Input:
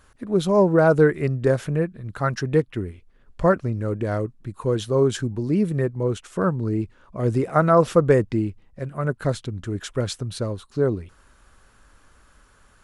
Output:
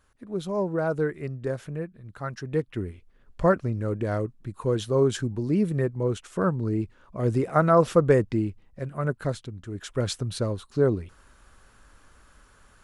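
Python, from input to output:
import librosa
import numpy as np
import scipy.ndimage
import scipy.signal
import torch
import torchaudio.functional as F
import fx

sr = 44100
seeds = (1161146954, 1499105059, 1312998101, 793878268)

y = fx.gain(x, sr, db=fx.line((2.4, -10.0), (2.82, -2.5), (9.08, -2.5), (9.63, -9.0), (10.09, -0.5)))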